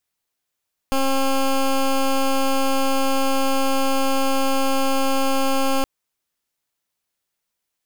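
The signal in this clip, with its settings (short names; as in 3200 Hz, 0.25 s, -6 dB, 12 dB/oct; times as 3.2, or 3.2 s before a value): pulse 269 Hz, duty 14% -18.5 dBFS 4.92 s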